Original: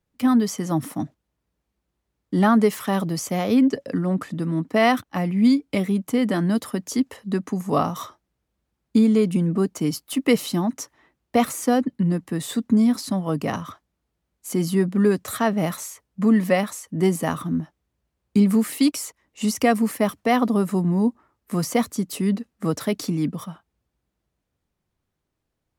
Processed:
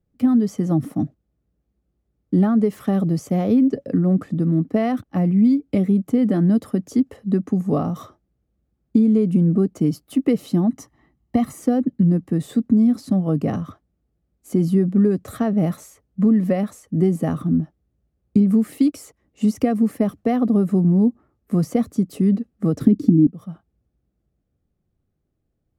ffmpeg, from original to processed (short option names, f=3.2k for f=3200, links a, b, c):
-filter_complex "[0:a]asettb=1/sr,asplit=3[a][b][c];[a]atrim=end=10.714[d];[b]atrim=start=10.71:end=11.59,asetpts=PTS-STARTPTS,afade=t=in:d=0.004:c=qsin,afade=t=out:st=0.876:d=0.004:c=qsin,aecho=1:1:1:0.57,atrim=end_sample=38808[e];[c]atrim=start=11.586[f];[d][e]acrossfade=d=0.004:c1=hsin:c2=qsin[g];[g][f]acrossfade=d=0.004:c1=qsin:c2=hsin,asettb=1/sr,asplit=3[h][i][j];[h]atrim=end=22.804[k];[i]atrim=start=22.8:end=23.27,asetpts=PTS-STARTPTS,afade=t=in:d=0.004:c=qsin,afade=t=out:st=0.466:d=0.004:c=qsin,lowshelf=f=440:t=q:w=3:g=13.5[l];[j]atrim=start=23.266[m];[k][l]acrossfade=d=0.004:c1=hsin:c2=qsin[n];[n][m]acrossfade=d=0.004:c1=qsin:c2=hsin,acompressor=threshold=-18dB:ratio=6,tiltshelf=f=810:g=9,bandreject=f=960:w=5.8,volume=-1.5dB"